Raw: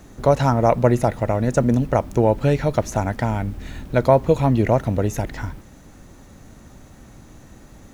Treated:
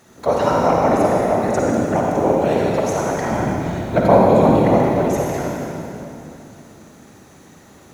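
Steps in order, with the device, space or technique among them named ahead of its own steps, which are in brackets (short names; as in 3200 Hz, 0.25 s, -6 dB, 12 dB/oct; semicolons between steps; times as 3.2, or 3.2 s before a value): 3.3–4.52 low shelf 420 Hz +9 dB; whispering ghost (whisperiser; HPF 350 Hz 6 dB/oct; reverb RT60 3.0 s, pre-delay 45 ms, DRR -3.5 dB); gain -1 dB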